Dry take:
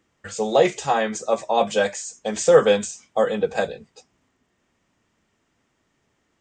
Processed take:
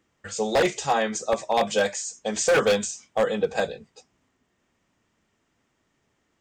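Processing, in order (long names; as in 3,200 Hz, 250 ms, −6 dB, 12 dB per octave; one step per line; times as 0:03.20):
dynamic equaliser 5,200 Hz, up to +4 dB, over −43 dBFS, Q 0.97
wave folding −11.5 dBFS
level −2 dB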